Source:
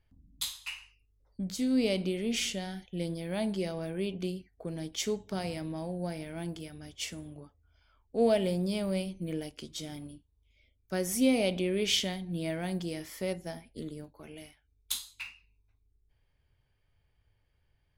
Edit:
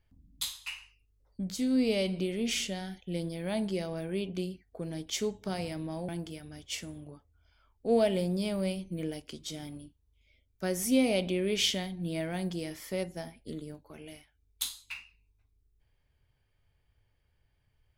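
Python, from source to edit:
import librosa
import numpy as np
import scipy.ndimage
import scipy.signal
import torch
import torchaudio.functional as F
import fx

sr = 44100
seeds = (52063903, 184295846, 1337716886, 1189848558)

y = fx.edit(x, sr, fx.stretch_span(start_s=1.76, length_s=0.29, factor=1.5),
    fx.cut(start_s=5.94, length_s=0.44), tone=tone)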